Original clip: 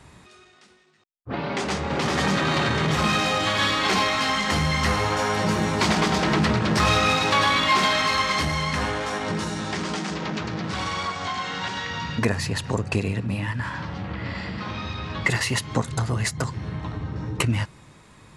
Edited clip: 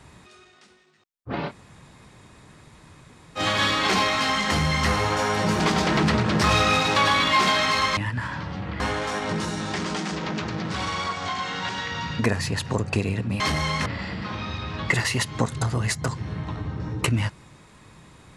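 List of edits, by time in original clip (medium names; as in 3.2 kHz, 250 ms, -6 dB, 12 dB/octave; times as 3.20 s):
1.49–3.38 s: room tone, crossfade 0.06 s
5.60–5.96 s: delete
8.33–8.79 s: swap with 13.39–14.22 s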